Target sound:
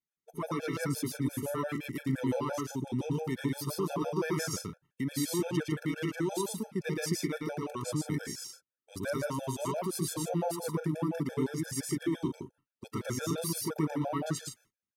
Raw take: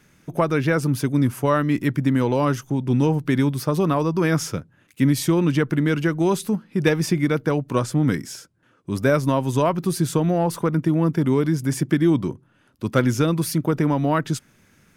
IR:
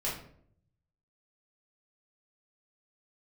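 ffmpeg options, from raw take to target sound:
-af "agate=range=-33dB:threshold=-45dB:ratio=16:detection=peak,bass=frequency=250:gain=-5,treble=frequency=4000:gain=5,alimiter=limit=-14.5dB:level=0:latency=1:release=101,aecho=1:1:113.7|151.6:0.891|0.398,afftfilt=real='re*gt(sin(2*PI*5.8*pts/sr)*(1-2*mod(floor(b*sr/1024/450),2)),0)':imag='im*gt(sin(2*PI*5.8*pts/sr)*(1-2*mod(floor(b*sr/1024/450),2)),0)':win_size=1024:overlap=0.75,volume=-8dB"

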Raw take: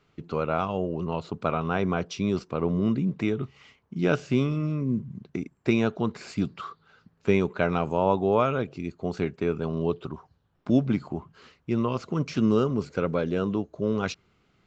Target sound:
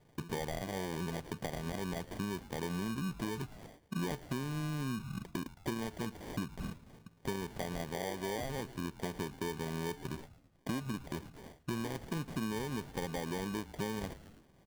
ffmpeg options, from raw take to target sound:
ffmpeg -i in.wav -filter_complex "[0:a]acrusher=samples=33:mix=1:aa=0.000001,asplit=2[link_01][link_02];[link_02]asplit=3[link_03][link_04][link_05];[link_03]adelay=109,afreqshift=-140,volume=-21.5dB[link_06];[link_04]adelay=218,afreqshift=-280,volume=-28.2dB[link_07];[link_05]adelay=327,afreqshift=-420,volume=-35dB[link_08];[link_06][link_07][link_08]amix=inputs=3:normalize=0[link_09];[link_01][link_09]amix=inputs=2:normalize=0,acompressor=threshold=-34dB:ratio=12,asoftclip=type=tanh:threshold=-26.5dB,volume=1.5dB" out.wav

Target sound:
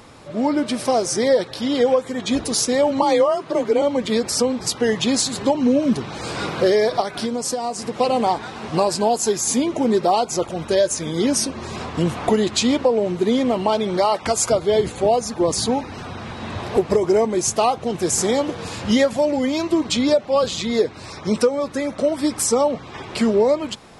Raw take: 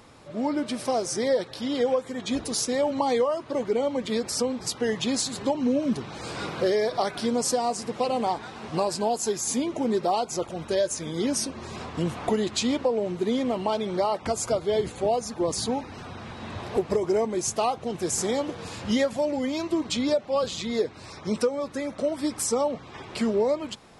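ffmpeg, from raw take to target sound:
ffmpeg -i in.wav -filter_complex "[0:a]asettb=1/sr,asplit=3[link_01][link_02][link_03];[link_01]atrim=end=3.024[link_04];[link_02]atrim=start=3.02:end=3.82,asetpts=PTS-STARTPTS,afade=type=in:duration=0.004:curve=qsin,afade=type=out:start_time=0.796:duration=0.004:curve=qsin,afreqshift=32[link_05];[link_03]atrim=start=3.816[link_06];[link_04][link_05]acrossfade=duration=0.004:curve1=hsin:curve2=qsin[link_07];[link_07][link_06]acrossfade=duration=0.004:curve1=qsin:curve2=hsin,asettb=1/sr,asplit=3[link_08][link_09][link_10];[link_08]atrim=end=7.004[link_11];[link_09]atrim=start=7:end=8,asetpts=PTS-STARTPTS,afade=type=in:duration=0.004:curve=qsin,afade=type=out:start_time=0.996:duration=0.004:curve=qsin,acompressor=threshold=-28dB:ratio=6[link_12];[link_10]atrim=start=7.996[link_13];[link_11][link_12]acrossfade=duration=0.004:curve1=hsin:curve2=qsin[link_14];[link_14][link_13]acrossfade=duration=0.004:curve1=qsin:curve2=hsin,asettb=1/sr,asplit=3[link_15][link_16][link_17];[link_15]atrim=end=13.974[link_18];[link_16]atrim=start=13.97:end=14.5,asetpts=PTS-STARTPTS,afade=type=in:duration=0.004:curve=qsin,afade=type=out:start_time=0.526:duration=0.004:curve=qsin,tiltshelf=frequency=750:gain=-3.5[link_19];[link_17]atrim=start=14.496[link_20];[link_18][link_19]acrossfade=duration=0.004:curve1=hsin:curve2=qsin[link_21];[link_21][link_20]acrossfade=duration=0.004:curve1=qsin:curve2=hsin,volume=7dB" out.wav

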